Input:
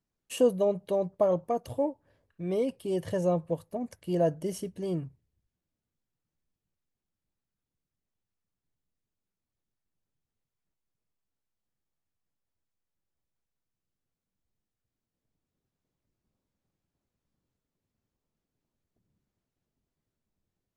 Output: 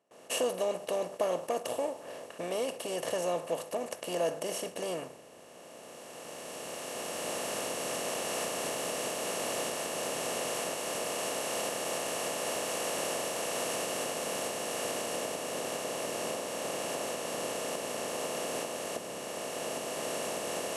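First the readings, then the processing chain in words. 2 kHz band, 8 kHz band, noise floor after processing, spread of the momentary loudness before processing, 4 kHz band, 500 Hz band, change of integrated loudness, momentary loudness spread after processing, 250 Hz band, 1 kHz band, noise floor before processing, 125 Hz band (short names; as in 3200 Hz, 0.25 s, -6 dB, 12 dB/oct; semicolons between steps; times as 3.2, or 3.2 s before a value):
+16.5 dB, +18.5 dB, -50 dBFS, 10 LU, +16.0 dB, -0.5 dB, -4.0 dB, 7 LU, -5.0 dB, +6.0 dB, under -85 dBFS, -9.5 dB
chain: per-bin compression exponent 0.4; recorder AGC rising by 8.8 dB/s; gate with hold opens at -35 dBFS; HPF 1400 Hz 6 dB/oct; mismatched tape noise reduction decoder only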